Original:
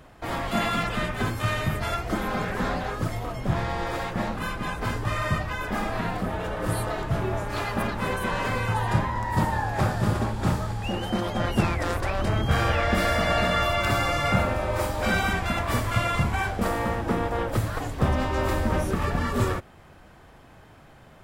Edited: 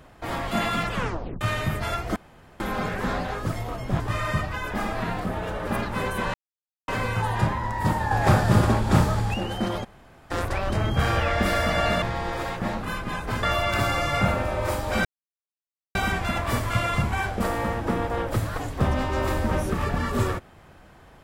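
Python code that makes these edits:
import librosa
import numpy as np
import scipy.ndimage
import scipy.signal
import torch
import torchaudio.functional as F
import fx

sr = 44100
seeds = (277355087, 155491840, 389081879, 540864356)

y = fx.edit(x, sr, fx.tape_stop(start_s=0.93, length_s=0.48),
    fx.insert_room_tone(at_s=2.16, length_s=0.44),
    fx.move(start_s=3.56, length_s=1.41, to_s=13.54),
    fx.cut(start_s=6.64, length_s=1.09),
    fx.insert_silence(at_s=8.4, length_s=0.54),
    fx.clip_gain(start_s=9.63, length_s=1.23, db=5.5),
    fx.room_tone_fill(start_s=11.36, length_s=0.47, crossfade_s=0.02),
    fx.insert_silence(at_s=15.16, length_s=0.9), tone=tone)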